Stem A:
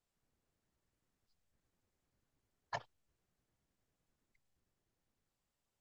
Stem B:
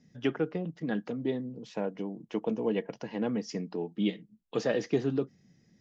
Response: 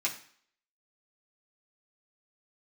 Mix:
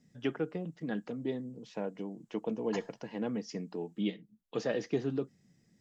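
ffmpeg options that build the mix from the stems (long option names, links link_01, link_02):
-filter_complex "[0:a]equalizer=frequency=7100:width=1.2:gain=11.5,volume=-4dB,asplit=3[link_01][link_02][link_03];[link_01]atrim=end=4.02,asetpts=PTS-STARTPTS,afade=type=out:start_time=4.016:duration=0.004:curve=hsin[link_04];[link_02]atrim=start=4.02:end=4.65,asetpts=PTS-STARTPTS,volume=0[link_05];[link_03]atrim=start=4.65,asetpts=PTS-STARTPTS,afade=type=in:duration=0.004:curve=hsin[link_06];[link_04][link_05][link_06]concat=n=3:v=0:a=1,asplit=2[link_07][link_08];[link_08]volume=-10.5dB[link_09];[1:a]volume=-4dB[link_10];[2:a]atrim=start_sample=2205[link_11];[link_09][link_11]afir=irnorm=-1:irlink=0[link_12];[link_07][link_10][link_12]amix=inputs=3:normalize=0"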